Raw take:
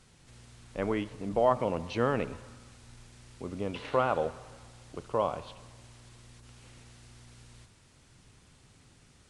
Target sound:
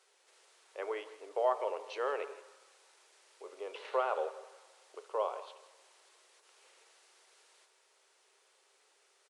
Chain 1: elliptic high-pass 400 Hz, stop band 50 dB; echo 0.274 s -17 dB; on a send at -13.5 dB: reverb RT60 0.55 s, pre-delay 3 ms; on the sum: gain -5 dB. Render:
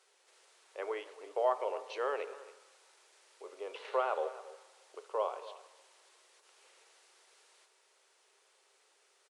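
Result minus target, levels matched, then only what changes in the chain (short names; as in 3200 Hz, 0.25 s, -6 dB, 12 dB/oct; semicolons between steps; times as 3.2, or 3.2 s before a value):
echo 0.109 s late
change: echo 0.165 s -17 dB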